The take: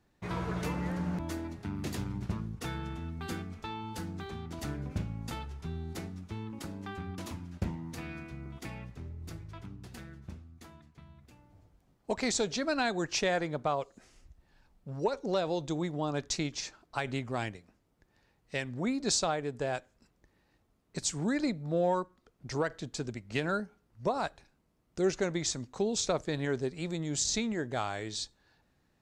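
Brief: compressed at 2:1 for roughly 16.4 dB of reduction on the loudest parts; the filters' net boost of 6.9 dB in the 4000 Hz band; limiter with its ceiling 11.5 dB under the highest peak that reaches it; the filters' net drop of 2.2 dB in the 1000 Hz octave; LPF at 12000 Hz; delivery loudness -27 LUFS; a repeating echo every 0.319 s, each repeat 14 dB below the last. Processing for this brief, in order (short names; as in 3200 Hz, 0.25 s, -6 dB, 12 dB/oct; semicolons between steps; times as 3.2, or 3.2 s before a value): LPF 12000 Hz; bell 1000 Hz -3.5 dB; bell 4000 Hz +8.5 dB; compressor 2:1, threshold -55 dBFS; limiter -41.5 dBFS; feedback echo 0.319 s, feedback 20%, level -14 dB; gain +24.5 dB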